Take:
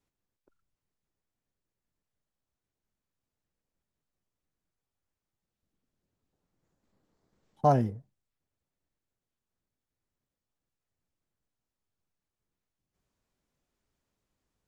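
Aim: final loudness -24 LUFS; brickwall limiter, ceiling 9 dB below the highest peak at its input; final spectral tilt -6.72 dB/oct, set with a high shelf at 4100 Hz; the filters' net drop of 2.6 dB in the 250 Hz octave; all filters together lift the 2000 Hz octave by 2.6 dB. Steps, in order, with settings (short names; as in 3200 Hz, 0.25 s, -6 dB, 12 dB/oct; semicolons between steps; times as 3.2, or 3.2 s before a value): bell 250 Hz -3.5 dB; bell 2000 Hz +4.5 dB; high shelf 4100 Hz -4.5 dB; gain +9.5 dB; limiter -11 dBFS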